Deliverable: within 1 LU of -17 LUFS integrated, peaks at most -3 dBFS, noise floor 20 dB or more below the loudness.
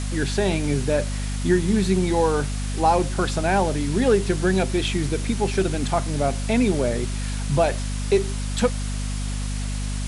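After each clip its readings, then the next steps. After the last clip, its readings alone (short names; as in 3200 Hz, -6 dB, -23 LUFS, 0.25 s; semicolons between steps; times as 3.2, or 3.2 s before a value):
hum 50 Hz; harmonics up to 250 Hz; hum level -24 dBFS; noise floor -27 dBFS; noise floor target -43 dBFS; loudness -23.0 LUFS; peak -7.0 dBFS; loudness target -17.0 LUFS
-> de-hum 50 Hz, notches 5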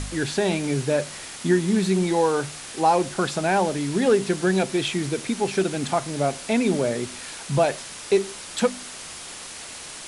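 hum none; noise floor -38 dBFS; noise floor target -44 dBFS
-> denoiser 6 dB, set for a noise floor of -38 dBFS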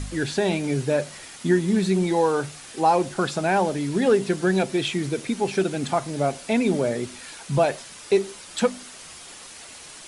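noise floor -43 dBFS; noise floor target -44 dBFS
-> denoiser 6 dB, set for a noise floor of -43 dBFS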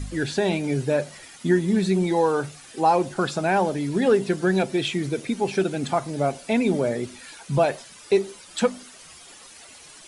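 noise floor -47 dBFS; loudness -23.5 LUFS; peak -8.0 dBFS; loudness target -17.0 LUFS
-> gain +6.5 dB; limiter -3 dBFS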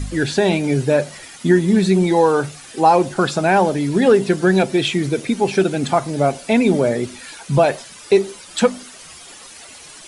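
loudness -17.5 LUFS; peak -3.0 dBFS; noise floor -40 dBFS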